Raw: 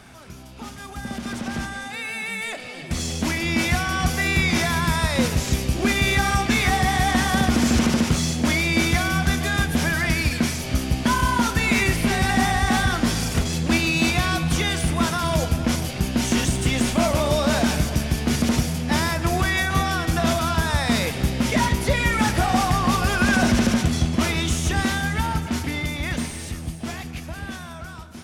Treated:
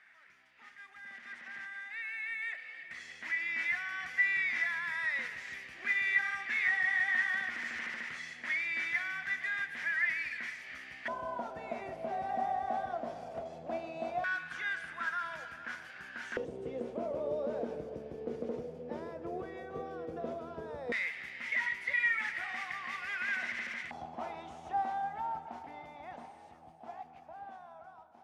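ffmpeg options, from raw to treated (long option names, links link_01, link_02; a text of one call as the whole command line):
ffmpeg -i in.wav -af "asetnsamples=nb_out_samples=441:pad=0,asendcmd='11.08 bandpass f 660;14.24 bandpass f 1600;16.37 bandpass f 470;20.92 bandpass f 2000;23.91 bandpass f 790',bandpass=frequency=1900:width_type=q:width=8.1:csg=0" out.wav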